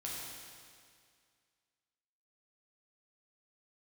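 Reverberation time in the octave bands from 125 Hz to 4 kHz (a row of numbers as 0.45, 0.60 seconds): 2.1, 2.1, 2.1, 2.1, 2.1, 2.0 seconds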